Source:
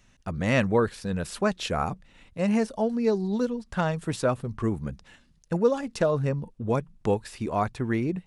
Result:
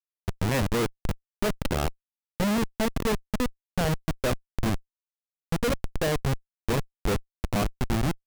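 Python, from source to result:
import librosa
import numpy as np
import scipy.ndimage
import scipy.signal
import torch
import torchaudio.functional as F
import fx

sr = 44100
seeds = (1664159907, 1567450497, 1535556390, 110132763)

y = fx.rev_spring(x, sr, rt60_s=2.0, pass_ms=(54,), chirp_ms=30, drr_db=19.0)
y = fx.schmitt(y, sr, flips_db=-23.0)
y = F.gain(torch.from_numpy(y), 3.5).numpy()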